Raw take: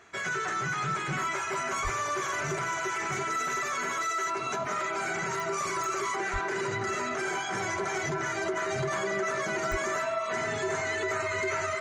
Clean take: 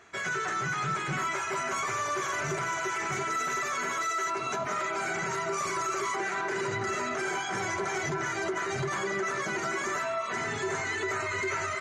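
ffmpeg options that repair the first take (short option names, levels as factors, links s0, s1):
-filter_complex "[0:a]adeclick=t=4,bandreject=f=640:w=30,asplit=3[s0][s1][s2];[s0]afade=t=out:st=1.83:d=0.02[s3];[s1]highpass=f=140:w=0.5412,highpass=f=140:w=1.3066,afade=t=in:st=1.83:d=0.02,afade=t=out:st=1.95:d=0.02[s4];[s2]afade=t=in:st=1.95:d=0.02[s5];[s3][s4][s5]amix=inputs=3:normalize=0,asplit=3[s6][s7][s8];[s6]afade=t=out:st=6.32:d=0.02[s9];[s7]highpass=f=140:w=0.5412,highpass=f=140:w=1.3066,afade=t=in:st=6.32:d=0.02,afade=t=out:st=6.44:d=0.02[s10];[s8]afade=t=in:st=6.44:d=0.02[s11];[s9][s10][s11]amix=inputs=3:normalize=0,asplit=3[s12][s13][s14];[s12]afade=t=out:st=9.7:d=0.02[s15];[s13]highpass=f=140:w=0.5412,highpass=f=140:w=1.3066,afade=t=in:st=9.7:d=0.02,afade=t=out:st=9.82:d=0.02[s16];[s14]afade=t=in:st=9.82:d=0.02[s17];[s15][s16][s17]amix=inputs=3:normalize=0"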